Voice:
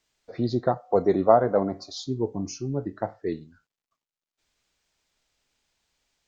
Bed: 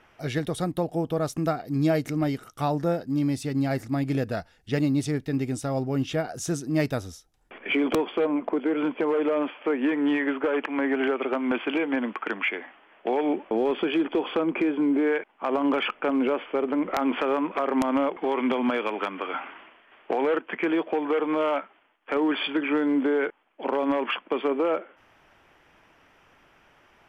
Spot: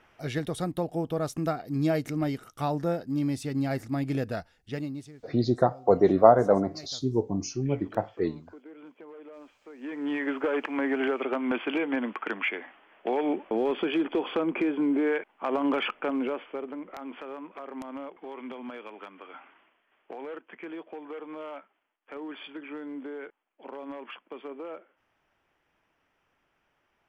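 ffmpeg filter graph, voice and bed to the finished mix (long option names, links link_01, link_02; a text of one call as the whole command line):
ffmpeg -i stem1.wav -i stem2.wav -filter_complex "[0:a]adelay=4950,volume=1dB[link_01];[1:a]volume=17dB,afade=type=out:start_time=4.35:duration=0.78:silence=0.105925,afade=type=in:start_time=9.74:duration=0.63:silence=0.1,afade=type=out:start_time=15.84:duration=1.03:silence=0.237137[link_02];[link_01][link_02]amix=inputs=2:normalize=0" out.wav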